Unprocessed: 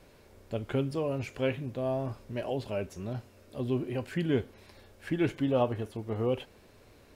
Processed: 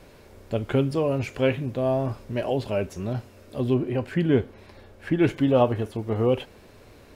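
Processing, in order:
high-shelf EQ 3,300 Hz −2 dB, from 0:03.74 −10 dB, from 0:05.23 −2.5 dB
level +7.5 dB

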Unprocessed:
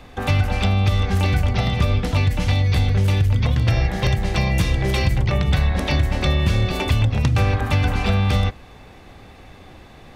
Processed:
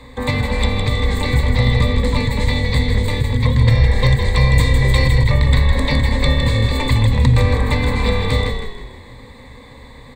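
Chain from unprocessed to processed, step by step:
EQ curve with evenly spaced ripples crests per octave 1, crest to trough 16 dB
on a send: echo with shifted repeats 159 ms, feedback 40%, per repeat −38 Hz, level −6.5 dB

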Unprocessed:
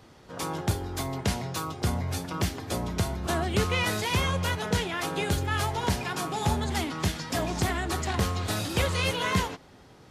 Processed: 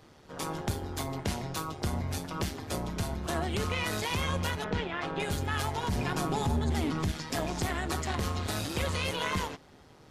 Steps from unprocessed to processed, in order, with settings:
0:04.64–0:05.20: low-pass filter 3,000 Hz 12 dB per octave
0:05.88–0:07.12: low-shelf EQ 460 Hz +9 dB
brickwall limiter −18 dBFS, peak gain reduction 10.5 dB
amplitude modulation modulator 150 Hz, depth 45%

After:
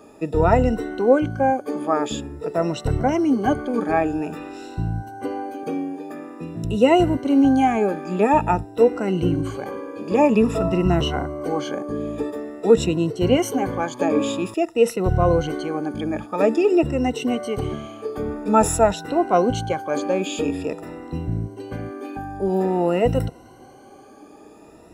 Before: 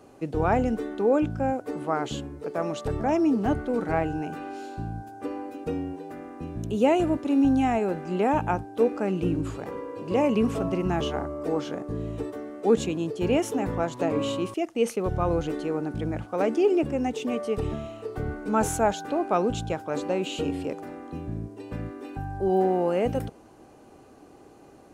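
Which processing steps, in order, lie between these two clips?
rippled gain that drifts along the octave scale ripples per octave 2, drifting +0.49 Hz, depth 16 dB
0:05.63–0:06.64: high-pass filter 130 Hz 24 dB per octave
level +3 dB

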